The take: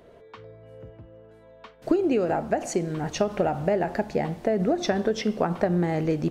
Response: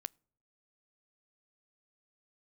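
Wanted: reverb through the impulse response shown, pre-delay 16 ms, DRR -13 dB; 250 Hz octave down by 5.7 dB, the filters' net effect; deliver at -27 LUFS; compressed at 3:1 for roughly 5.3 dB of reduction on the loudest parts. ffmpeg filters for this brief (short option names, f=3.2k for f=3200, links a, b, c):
-filter_complex "[0:a]equalizer=f=250:t=o:g=-9,acompressor=threshold=-28dB:ratio=3,asplit=2[a][b];[1:a]atrim=start_sample=2205,adelay=16[c];[b][c]afir=irnorm=-1:irlink=0,volume=16.5dB[d];[a][d]amix=inputs=2:normalize=0,volume=-8dB"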